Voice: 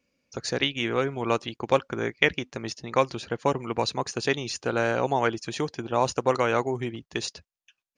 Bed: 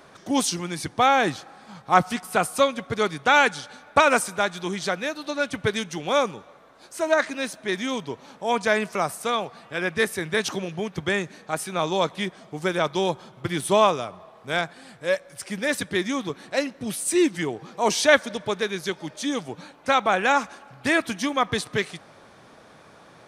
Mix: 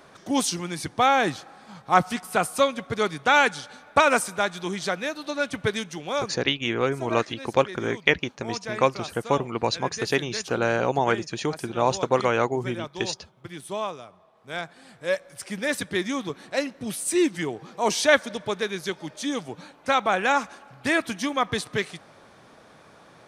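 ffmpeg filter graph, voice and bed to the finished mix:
-filter_complex "[0:a]adelay=5850,volume=1.5dB[a];[1:a]volume=9.5dB,afade=t=out:st=5.66:d=0.86:silence=0.281838,afade=t=in:st=14.32:d=0.83:silence=0.298538[b];[a][b]amix=inputs=2:normalize=0"

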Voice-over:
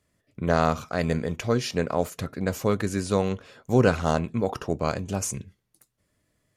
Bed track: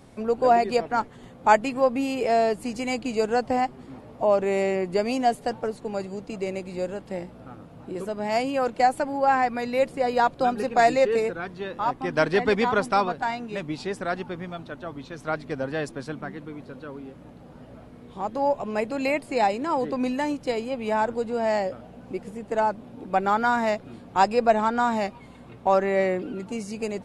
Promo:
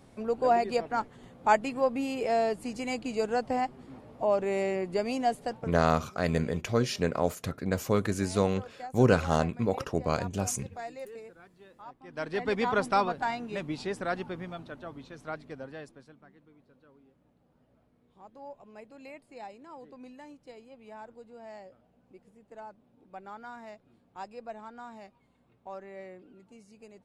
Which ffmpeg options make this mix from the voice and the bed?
-filter_complex "[0:a]adelay=5250,volume=-2.5dB[a];[1:a]volume=12.5dB,afade=t=out:st=5.44:d=0.41:silence=0.158489,afade=t=in:st=12.05:d=0.78:silence=0.125893,afade=t=out:st=14.2:d=1.93:silence=0.11885[b];[a][b]amix=inputs=2:normalize=0"

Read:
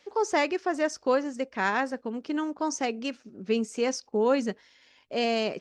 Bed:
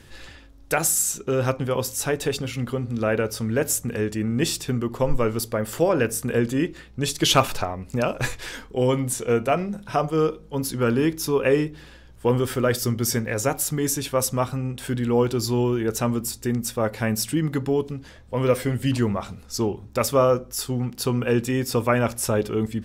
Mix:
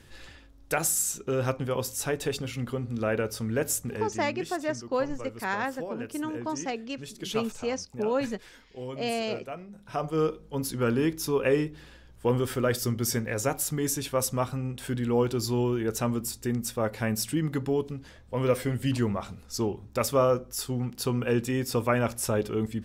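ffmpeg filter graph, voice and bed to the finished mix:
-filter_complex "[0:a]adelay=3850,volume=-3.5dB[a];[1:a]volume=7.5dB,afade=t=out:st=3.78:d=0.58:silence=0.251189,afade=t=in:st=9.71:d=0.51:silence=0.237137[b];[a][b]amix=inputs=2:normalize=0"

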